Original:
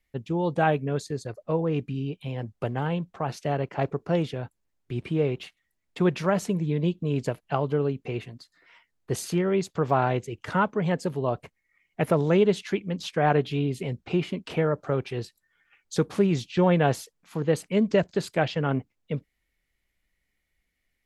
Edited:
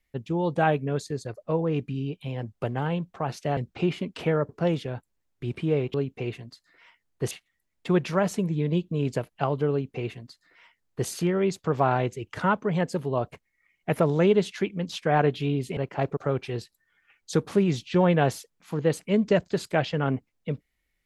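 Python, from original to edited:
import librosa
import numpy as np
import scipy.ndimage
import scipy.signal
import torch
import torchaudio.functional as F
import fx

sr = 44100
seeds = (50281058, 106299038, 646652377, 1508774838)

y = fx.edit(x, sr, fx.swap(start_s=3.57, length_s=0.4, other_s=13.88, other_length_s=0.92),
    fx.duplicate(start_s=7.82, length_s=1.37, to_s=5.42), tone=tone)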